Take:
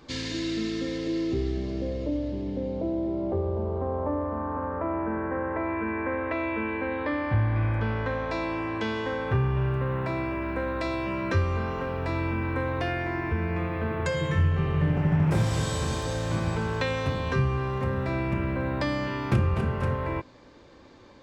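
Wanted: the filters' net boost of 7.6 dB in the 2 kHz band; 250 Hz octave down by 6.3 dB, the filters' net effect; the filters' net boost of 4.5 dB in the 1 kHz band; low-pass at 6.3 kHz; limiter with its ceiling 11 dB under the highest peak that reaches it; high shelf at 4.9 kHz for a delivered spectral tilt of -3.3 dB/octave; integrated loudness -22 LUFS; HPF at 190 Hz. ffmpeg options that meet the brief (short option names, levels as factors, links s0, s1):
-af "highpass=190,lowpass=6300,equalizer=f=250:t=o:g=-8,equalizer=f=1000:t=o:g=3.5,equalizer=f=2000:t=o:g=9,highshelf=f=4900:g=-3,volume=2.66,alimiter=limit=0.211:level=0:latency=1"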